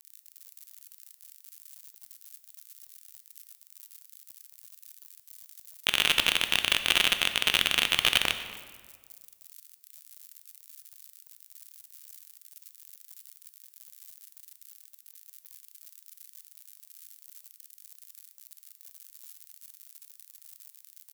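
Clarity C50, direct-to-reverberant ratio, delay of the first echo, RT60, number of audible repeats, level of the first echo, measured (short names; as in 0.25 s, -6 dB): 10.0 dB, 8.0 dB, 0.246 s, 1.6 s, 1, -21.0 dB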